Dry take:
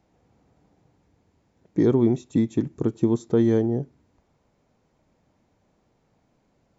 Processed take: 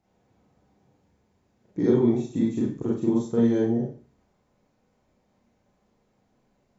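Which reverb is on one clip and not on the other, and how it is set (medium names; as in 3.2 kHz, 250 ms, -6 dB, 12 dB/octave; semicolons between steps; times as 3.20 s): Schroeder reverb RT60 0.4 s, combs from 30 ms, DRR -5.5 dB; trim -8 dB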